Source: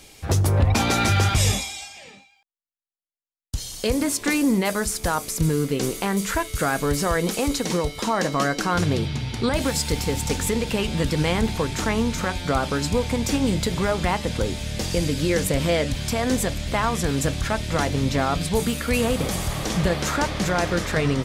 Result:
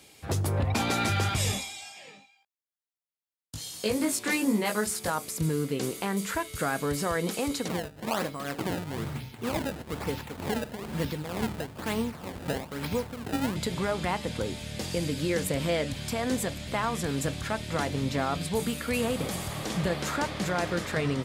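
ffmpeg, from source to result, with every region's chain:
ffmpeg -i in.wav -filter_complex "[0:a]asettb=1/sr,asplit=3[link_01][link_02][link_03];[link_01]atrim=end=1.834[link_04];[link_02]atrim=start=1.83:end=5.1,asetpts=PTS-STARTPTS,afade=type=in:duration=0.004:curve=qsin,afade=type=out:start_time=3.266:duration=0.004:curve=qsin,highpass=67,lowshelf=frequency=220:gain=-3,asplit=2[link_05][link_06];[link_06]adelay=19,volume=-2dB[link_07];[link_05][link_07]amix=inputs=2:normalize=0,atrim=end_sample=144207[link_08];[link_03]atrim=start=5.096[link_09];[link_04][link_08]acrossfade=duration=0.004:curve1=hsin:curve2=qsin[link_10];[link_10][link_09]acrossfade=duration=0.004:curve1=qsin:curve2=hsin,asettb=1/sr,asplit=3[link_11][link_12][link_13];[link_11]atrim=end=7.684[link_14];[link_12]atrim=start=7.68:end=13.56,asetpts=PTS-STARTPTS,afade=type=in:duration=0.004:curve=qsin,afade=type=out:start_time=5.876:duration=0.004:curve=qsin,tremolo=f=2.1:d=0.65,acrusher=samples=23:mix=1:aa=0.000001:lfo=1:lforange=36.8:lforate=1.1,aeval=exprs='val(0)+0.00708*(sin(2*PI*50*n/s)+sin(2*PI*2*50*n/s)/2+sin(2*PI*3*50*n/s)/3+sin(2*PI*4*50*n/s)/4+sin(2*PI*5*50*n/s)/5)':channel_layout=same[link_15];[link_13]atrim=start=13.556[link_16];[link_14][link_15]acrossfade=duration=0.004:curve1=hsin:curve2=qsin[link_17];[link_17][link_16]acrossfade=duration=0.004:curve1=qsin:curve2=hsin,highpass=95,equalizer=frequency=5900:width=3.9:gain=-4,volume=-6dB" out.wav

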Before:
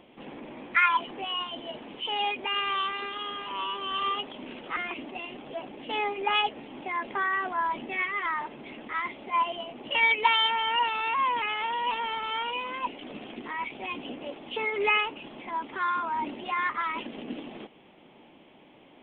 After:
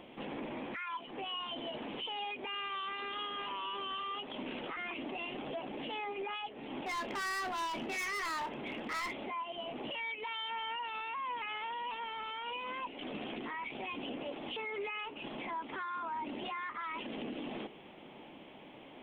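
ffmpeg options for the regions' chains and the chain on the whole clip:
ffmpeg -i in.wav -filter_complex "[0:a]asettb=1/sr,asplit=3[link_01][link_02][link_03];[link_01]atrim=end=6.864[link_04];[link_02]atrim=start=6.86:end=9.13,asetpts=PTS-STARTPTS,afade=type=in:duration=0.004:curve=qsin,afade=type=out:start_time=2.266:duration=0.004:curve=qsin,volume=35dB,asoftclip=hard,volume=-35dB,asplit=2[link_05][link_06];[link_06]adelay=30,volume=-13dB[link_07];[link_05][link_07]amix=inputs=2:normalize=0,atrim=end_sample=100107[link_08];[link_03]atrim=start=9.126[link_09];[link_04][link_08]acrossfade=duration=0.004:curve1=hsin:curve2=qsin[link_10];[link_10][link_09]acrossfade=duration=0.004:curve1=qsin:curve2=hsin,bandreject=frequency=60:width_type=h:width=6,bandreject=frequency=120:width_type=h:width=6,bandreject=frequency=180:width_type=h:width=6,bandreject=frequency=240:width_type=h:width=6,bandreject=frequency=300:width_type=h:width=6,bandreject=frequency=360:width_type=h:width=6,bandreject=frequency=420:width_type=h:width=6,acompressor=threshold=-37dB:ratio=10,alimiter=level_in=11dB:limit=-24dB:level=0:latency=1:release=20,volume=-11dB,volume=2.5dB" out.wav

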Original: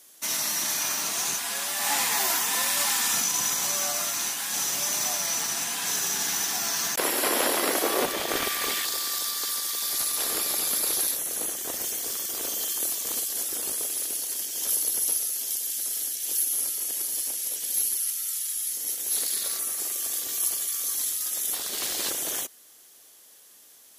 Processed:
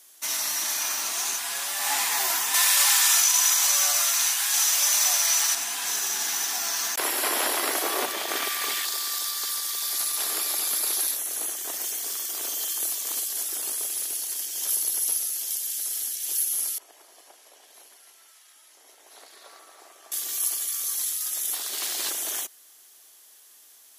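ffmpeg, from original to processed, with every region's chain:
ffmpeg -i in.wav -filter_complex "[0:a]asettb=1/sr,asplit=3[link_01][link_02][link_03];[link_01]atrim=end=2.544[link_04];[link_02]atrim=start=2.54:end=5.55,asetpts=PTS-STARTPTS,afade=type=in:duration=0.004:curve=qsin,afade=type=out:start_time=3.006:duration=0.004:curve=qsin,highpass=frequency=1100:poles=1,acontrast=49[link_05];[link_03]atrim=start=5.546[link_06];[link_04][link_05]acrossfade=duration=0.004:curve1=hsin:curve2=qsin[link_07];[link_07][link_06]acrossfade=duration=0.004:curve1=qsin:curve2=hsin,asettb=1/sr,asplit=3[link_08][link_09][link_10];[link_08]atrim=end=16.784[link_11];[link_09]atrim=start=16.78:end=20.12,asetpts=PTS-STARTPTS,afade=type=in:duration=0.004:curve=qsin,afade=type=out:start_time=3.336:duration=0.004:curve=qsin,bandpass=frequency=720:width_type=q:width=1.3,aecho=1:1:297:0.398,atrim=end_sample=147294[link_12];[link_10]atrim=start=20.116[link_13];[link_11][link_12]acrossfade=duration=0.004:curve1=hsin:curve2=qsin[link_14];[link_14][link_13]acrossfade=duration=0.004:curve1=qsin:curve2=hsin,highpass=390,equalizer=frequency=510:width=4.5:gain=-8" out.wav

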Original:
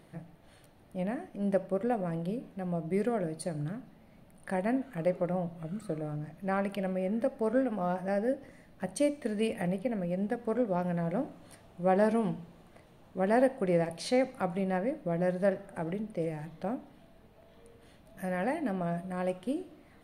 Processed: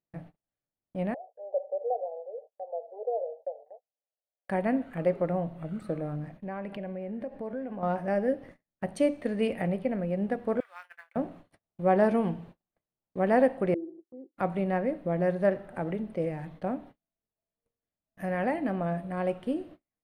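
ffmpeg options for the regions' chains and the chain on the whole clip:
ffmpeg -i in.wav -filter_complex "[0:a]asettb=1/sr,asplit=3[link_01][link_02][link_03];[link_01]atrim=end=1.144[link_04];[link_02]atrim=start=1.14:end=4.49,asetpts=PTS-STARTPTS,afade=type=in:duration=0.004:curve=qsin,afade=type=out:start_time=3.346:duration=0.004:curve=qsin,asoftclip=type=hard:threshold=-24.5dB,asuperpass=centerf=610:order=12:qfactor=1.6[link_05];[link_03]atrim=start=4.486[link_06];[link_04][link_05]acrossfade=duration=0.004:curve1=hsin:curve2=qsin[link_07];[link_07][link_06]acrossfade=duration=0.004:curve1=qsin:curve2=hsin,asettb=1/sr,asplit=3[link_08][link_09][link_10];[link_08]atrim=end=6.374[link_11];[link_09]atrim=start=6.37:end=7.83,asetpts=PTS-STARTPTS,afade=type=in:duration=0.004:curve=qsin,afade=type=out:start_time=1.456:duration=0.004:curve=qsin,aemphasis=mode=reproduction:type=cd,bandreject=frequency=1300:width=6,acompressor=threshold=-38dB:ratio=3:attack=3.2:release=140:knee=1:detection=peak[link_12];[link_10]atrim=start=7.826[link_13];[link_11][link_12]acrossfade=duration=0.004:curve1=hsin:curve2=qsin[link_14];[link_14][link_13]acrossfade=duration=0.004:curve1=qsin:curve2=hsin,asettb=1/sr,asplit=3[link_15][link_16][link_17];[link_15]atrim=end=10.604[link_18];[link_16]atrim=start=10.6:end=11.16,asetpts=PTS-STARTPTS,afade=type=in:duration=0.004:curve=qsin,afade=type=out:start_time=0.556:duration=0.004:curve=qsin,highpass=frequency=1400:width=0.5412,highpass=frequency=1400:width=1.3066,acrusher=bits=4:mode=log:mix=0:aa=0.000001[link_19];[link_17]atrim=start=11.156[link_20];[link_18][link_19]acrossfade=duration=0.004:curve1=hsin:curve2=qsin[link_21];[link_21][link_20]acrossfade=duration=0.004:curve1=qsin:curve2=hsin,asettb=1/sr,asplit=3[link_22][link_23][link_24];[link_22]atrim=end=13.744[link_25];[link_23]atrim=start=13.74:end=14.37,asetpts=PTS-STARTPTS,afade=type=in:duration=0.004:curve=qsin,afade=type=out:start_time=0.626:duration=0.004:curve=qsin,acompressor=mode=upward:threshold=-27dB:ratio=2.5:attack=3.2:release=140:knee=2.83:detection=peak,asuperpass=centerf=340:order=4:qfactor=5[link_26];[link_24]atrim=start=14.366[link_27];[link_25][link_26]acrossfade=duration=0.004:curve1=hsin:curve2=qsin[link_28];[link_28][link_27]acrossfade=duration=0.004:curve1=qsin:curve2=hsin,agate=range=-40dB:threshold=-49dB:ratio=16:detection=peak,bass=frequency=250:gain=-1,treble=frequency=4000:gain=-10,volume=3dB" out.wav

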